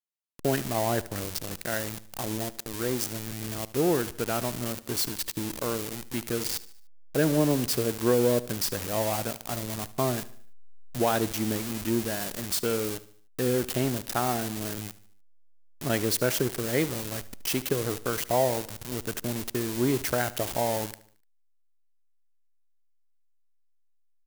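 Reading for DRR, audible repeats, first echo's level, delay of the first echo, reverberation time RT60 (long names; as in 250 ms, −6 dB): no reverb audible, 3, −18.0 dB, 74 ms, no reverb audible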